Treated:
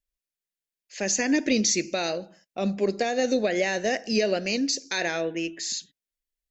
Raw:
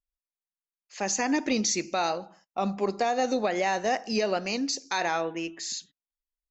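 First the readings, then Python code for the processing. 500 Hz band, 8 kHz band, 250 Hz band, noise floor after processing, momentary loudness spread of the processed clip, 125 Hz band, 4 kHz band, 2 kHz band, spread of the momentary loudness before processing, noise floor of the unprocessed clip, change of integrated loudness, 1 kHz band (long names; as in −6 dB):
+3.0 dB, can't be measured, +3.5 dB, below −85 dBFS, 8 LU, +3.5 dB, +3.5 dB, +3.0 dB, 8 LU, below −85 dBFS, +2.5 dB, −6.0 dB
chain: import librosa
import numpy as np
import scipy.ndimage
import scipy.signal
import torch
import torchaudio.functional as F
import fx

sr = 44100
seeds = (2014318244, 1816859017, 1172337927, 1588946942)

y = fx.band_shelf(x, sr, hz=1000.0, db=-12.5, octaves=1.0)
y = y * 10.0 ** (3.5 / 20.0)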